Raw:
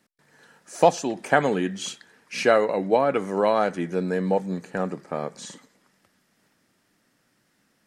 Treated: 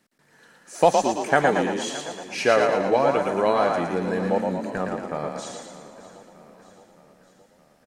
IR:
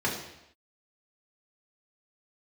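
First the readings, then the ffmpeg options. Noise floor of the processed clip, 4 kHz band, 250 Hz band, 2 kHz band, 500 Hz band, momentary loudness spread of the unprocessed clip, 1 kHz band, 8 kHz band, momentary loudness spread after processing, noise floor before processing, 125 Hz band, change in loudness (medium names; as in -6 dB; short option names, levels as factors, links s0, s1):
-60 dBFS, +2.0 dB, 0.0 dB, +2.0 dB, +1.0 dB, 14 LU, +2.5 dB, +2.0 dB, 13 LU, -69 dBFS, -0.5 dB, +1.0 dB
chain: -filter_complex "[0:a]asplit=2[s0][s1];[s1]aecho=0:1:616|1232|1848|2464|3080:0.133|0.0787|0.0464|0.0274|0.0162[s2];[s0][s2]amix=inputs=2:normalize=0,asubboost=boost=4.5:cutoff=94,asplit=2[s3][s4];[s4]asplit=7[s5][s6][s7][s8][s9][s10][s11];[s5]adelay=114,afreqshift=33,volume=0.631[s12];[s6]adelay=228,afreqshift=66,volume=0.335[s13];[s7]adelay=342,afreqshift=99,volume=0.178[s14];[s8]adelay=456,afreqshift=132,volume=0.0944[s15];[s9]adelay=570,afreqshift=165,volume=0.0495[s16];[s10]adelay=684,afreqshift=198,volume=0.0263[s17];[s11]adelay=798,afreqshift=231,volume=0.014[s18];[s12][s13][s14][s15][s16][s17][s18]amix=inputs=7:normalize=0[s19];[s3][s19]amix=inputs=2:normalize=0"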